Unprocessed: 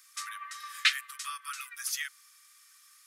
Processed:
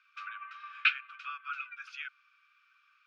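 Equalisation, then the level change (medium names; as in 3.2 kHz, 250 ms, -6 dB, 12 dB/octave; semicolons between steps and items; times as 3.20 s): two resonant band-passes 1.9 kHz, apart 0.76 oct; distance through air 240 m; +8.0 dB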